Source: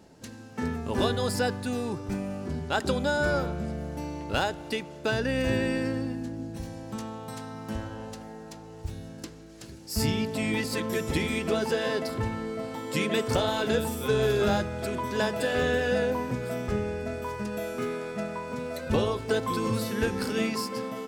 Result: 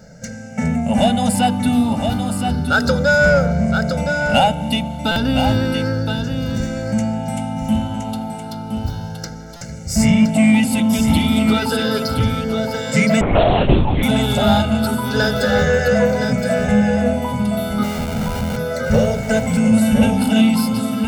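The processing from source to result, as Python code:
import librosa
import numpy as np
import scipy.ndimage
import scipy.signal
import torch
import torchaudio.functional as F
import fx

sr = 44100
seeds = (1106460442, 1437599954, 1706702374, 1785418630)

p1 = fx.spec_ripple(x, sr, per_octave=0.56, drift_hz=0.32, depth_db=14)
p2 = fx.hum_notches(p1, sr, base_hz=50, count=10)
p3 = fx.schmitt(p2, sr, flips_db=-31.0, at=(17.83, 18.57))
p4 = fx.peak_eq(p3, sr, hz=220.0, db=9.0, octaves=0.91)
p5 = p4 + 0.96 * np.pad(p4, (int(1.4 * sr / 1000.0), 0))[:len(p4)]
p6 = 10.0 ** (-19.0 / 20.0) * np.tanh(p5 / 10.0 ** (-19.0 / 20.0))
p7 = p5 + (p6 * librosa.db_to_amplitude(-3.0))
p8 = p7 + 10.0 ** (-6.5 / 20.0) * np.pad(p7, (int(1018 * sr / 1000.0), 0))[:len(p7)]
p9 = fx.lpc_vocoder(p8, sr, seeds[0], excitation='whisper', order=8, at=(13.21, 14.03))
p10 = fx.buffer_glitch(p9, sr, at_s=(5.11, 9.56), block=256, repeats=8)
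y = p10 * librosa.db_to_amplitude(1.0)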